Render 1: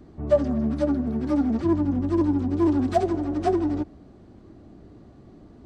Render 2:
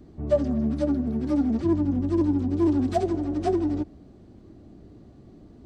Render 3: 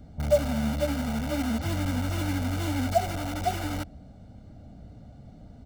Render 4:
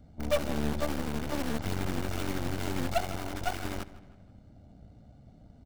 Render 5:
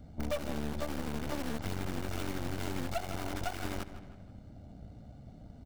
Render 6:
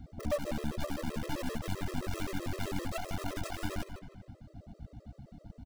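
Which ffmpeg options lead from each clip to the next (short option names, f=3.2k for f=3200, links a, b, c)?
-af "equalizer=f=1.2k:t=o:w=1.9:g=-5.5"
-filter_complex "[0:a]asplit=2[a][b];[b]aeval=exprs='(mod(20*val(0)+1,2)-1)/20':c=same,volume=-5.5dB[c];[a][c]amix=inputs=2:normalize=0,aecho=1:1:1.4:0.9,volume=-4dB"
-filter_complex "[0:a]aeval=exprs='0.316*(cos(1*acos(clip(val(0)/0.316,-1,1)))-cos(1*PI/2))+0.0708*(cos(8*acos(clip(val(0)/0.316,-1,1)))-cos(8*PI/2))':c=same,asplit=2[a][b];[b]adelay=158,lowpass=f=4.8k:p=1,volume=-17dB,asplit=2[c][d];[d]adelay=158,lowpass=f=4.8k:p=1,volume=0.47,asplit=2[e][f];[f]adelay=158,lowpass=f=4.8k:p=1,volume=0.47,asplit=2[g][h];[h]adelay=158,lowpass=f=4.8k:p=1,volume=0.47[i];[a][c][e][g][i]amix=inputs=5:normalize=0,volume=-7dB"
-af "acompressor=threshold=-34dB:ratio=6,volume=3.5dB"
-af "aecho=1:1:156:0.158,afftfilt=real='re*gt(sin(2*PI*7.7*pts/sr)*(1-2*mod(floor(b*sr/1024/340),2)),0)':imag='im*gt(sin(2*PI*7.7*pts/sr)*(1-2*mod(floor(b*sr/1024/340),2)),0)':win_size=1024:overlap=0.75,volume=3.5dB"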